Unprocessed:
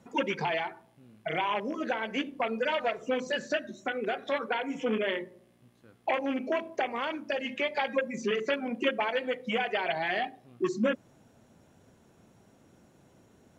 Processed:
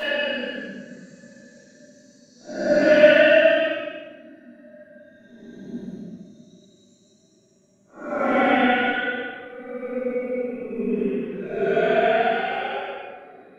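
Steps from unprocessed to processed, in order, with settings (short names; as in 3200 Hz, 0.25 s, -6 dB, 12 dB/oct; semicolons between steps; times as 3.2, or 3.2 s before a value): transient shaper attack +8 dB, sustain -10 dB; Paulstretch 16×, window 0.05 s, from 3.35; shoebox room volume 480 m³, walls mixed, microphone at 6.8 m; gain -10 dB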